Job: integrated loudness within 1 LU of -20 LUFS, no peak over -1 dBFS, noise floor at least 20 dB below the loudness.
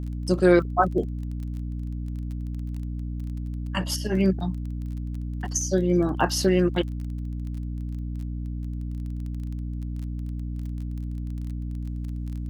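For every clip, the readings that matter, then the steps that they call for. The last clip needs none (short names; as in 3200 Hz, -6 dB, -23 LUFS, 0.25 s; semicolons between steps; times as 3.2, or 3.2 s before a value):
ticks 21/s; hum 60 Hz; harmonics up to 300 Hz; hum level -28 dBFS; loudness -27.5 LUFS; peak -6.0 dBFS; loudness target -20.0 LUFS
-> de-click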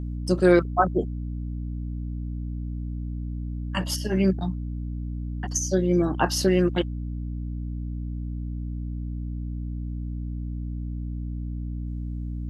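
ticks 0/s; hum 60 Hz; harmonics up to 300 Hz; hum level -28 dBFS
-> notches 60/120/180/240/300 Hz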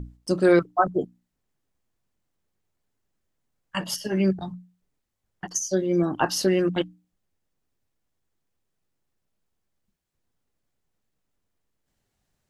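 hum none; loudness -24.5 LUFS; peak -6.5 dBFS; loudness target -20.0 LUFS
-> gain +4.5 dB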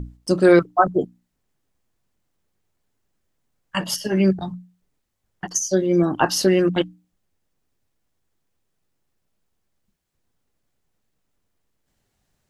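loudness -20.0 LUFS; peak -2.0 dBFS; noise floor -75 dBFS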